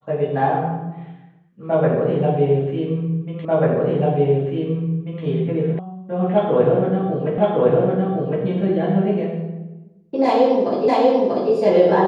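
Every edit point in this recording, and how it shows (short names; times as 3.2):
3.45 repeat of the last 1.79 s
5.79 sound cut off
7.38 repeat of the last 1.06 s
10.88 repeat of the last 0.64 s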